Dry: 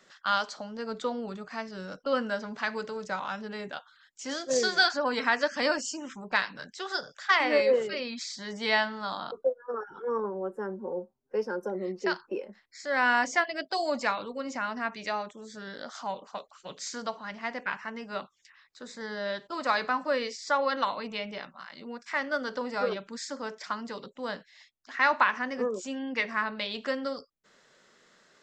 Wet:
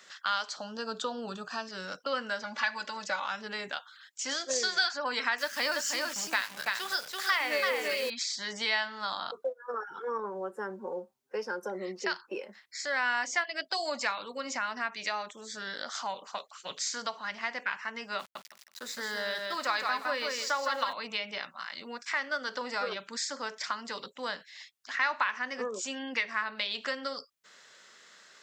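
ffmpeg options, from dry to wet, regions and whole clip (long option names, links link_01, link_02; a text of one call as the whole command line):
ffmpeg -i in.wav -filter_complex "[0:a]asettb=1/sr,asplit=3[link_01][link_02][link_03];[link_01]atrim=end=0.564[link_04];[link_02]atrim=start=0.56:end=1.69,asetpts=PTS-STARTPTS,afade=type=in:duration=0.004:curve=qsin,afade=type=out:start_time=1.126:duration=0.004:curve=qsin,asuperstop=centerf=2100:order=4:qfactor=2.8,lowshelf=frequency=210:gain=6[link_05];[link_03]atrim=start=1.686[link_06];[link_04][link_05]acrossfade=duration=0.004:curve1=hsin:curve2=qsin[link_07];[link_07][link_06]acrossfade=duration=0.004:curve1=qsin:curve2=hsin,asettb=1/sr,asplit=3[link_08][link_09][link_10];[link_08]atrim=end=2.434[link_11];[link_09]atrim=start=2.43:end=3.26,asetpts=PTS-STARTPTS,afade=type=in:duration=0.004:curve=qsin,afade=type=out:start_time=0.826:duration=0.004:curve=qsin,lowpass=6900,equalizer=frequency=250:width_type=o:width=0.52:gain=-5,aecho=1:1:3.5:0.97,atrim=end_sample=36603[link_12];[link_10]atrim=start=3.256[link_13];[link_11][link_12]acrossfade=duration=0.004:curve1=hsin:curve2=qsin[link_14];[link_14][link_13]acrossfade=duration=0.004:curve1=qsin:curve2=hsin,asettb=1/sr,asplit=3[link_15][link_16][link_17];[link_15]atrim=end=5.384[link_18];[link_16]atrim=start=5.38:end=8.1,asetpts=PTS-STARTPTS,afade=type=in:duration=0.004:curve=qsin,afade=type=out:start_time=2.716:duration=0.004:curve=qsin,acrusher=bits=8:dc=4:mix=0:aa=0.000001,highpass=63,aecho=1:1:334:0.596,atrim=end_sample=119952[link_19];[link_17]atrim=start=8.096[link_20];[link_18][link_19]acrossfade=duration=0.004:curve1=hsin:curve2=qsin[link_21];[link_21][link_20]acrossfade=duration=0.004:curve1=qsin:curve2=hsin,asettb=1/sr,asplit=3[link_22][link_23][link_24];[link_22]atrim=end=18.194[link_25];[link_23]atrim=start=18.19:end=20.93,asetpts=PTS-STARTPTS,afade=type=in:duration=0.004:curve=qsin,afade=type=out:start_time=2.736:duration=0.004:curve=qsin,aeval=exprs='val(0)*gte(abs(val(0)),0.00299)':channel_layout=same,aecho=1:1:162|324|486:0.596|0.107|0.0193,atrim=end_sample=120834[link_26];[link_24]atrim=start=20.926[link_27];[link_25][link_26]acrossfade=duration=0.004:curve1=hsin:curve2=qsin[link_28];[link_28][link_27]acrossfade=duration=0.004:curve1=qsin:curve2=hsin,highpass=62,tiltshelf=frequency=720:gain=-7.5,acompressor=threshold=-34dB:ratio=2,volume=1dB" out.wav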